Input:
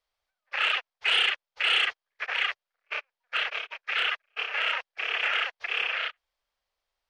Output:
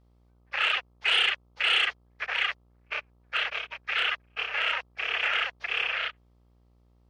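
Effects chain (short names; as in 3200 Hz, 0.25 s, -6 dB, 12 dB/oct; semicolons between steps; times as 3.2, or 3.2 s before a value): buzz 60 Hz, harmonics 22, -62 dBFS -7 dB/oct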